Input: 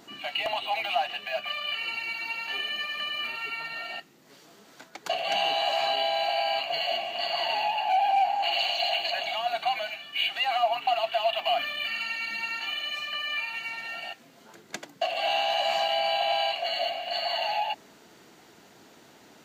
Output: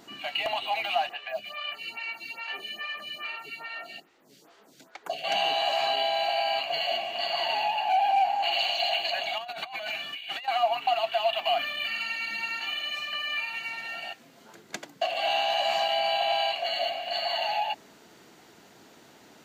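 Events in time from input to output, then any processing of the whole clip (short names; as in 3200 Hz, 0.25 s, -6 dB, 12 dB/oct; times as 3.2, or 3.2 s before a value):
1.09–5.24 photocell phaser 2.4 Hz
9.38–10.48 negative-ratio compressor -37 dBFS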